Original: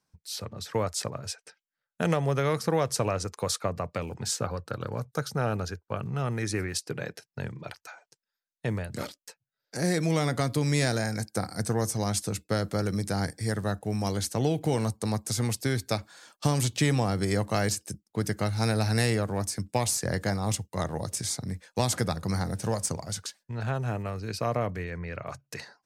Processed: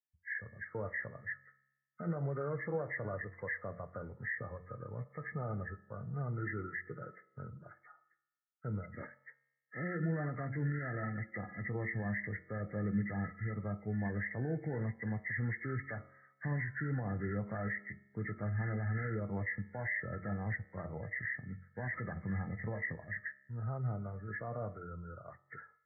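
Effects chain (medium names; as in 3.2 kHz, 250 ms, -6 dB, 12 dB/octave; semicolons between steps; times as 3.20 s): knee-point frequency compression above 1.2 kHz 4:1; de-hum 45.29 Hz, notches 34; peak limiter -21.5 dBFS, peak gain reduction 10 dB; feedback comb 68 Hz, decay 1.5 s, harmonics all, mix 60%; spectral contrast expander 1.5:1; trim +2.5 dB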